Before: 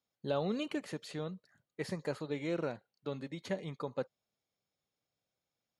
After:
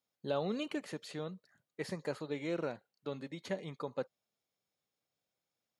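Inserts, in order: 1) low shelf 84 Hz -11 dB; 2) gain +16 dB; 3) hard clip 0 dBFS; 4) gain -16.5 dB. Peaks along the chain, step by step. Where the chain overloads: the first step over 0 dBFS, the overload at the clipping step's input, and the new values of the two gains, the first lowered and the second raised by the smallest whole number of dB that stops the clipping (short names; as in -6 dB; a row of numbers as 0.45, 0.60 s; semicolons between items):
-21.5, -5.5, -5.5, -22.0 dBFS; no overload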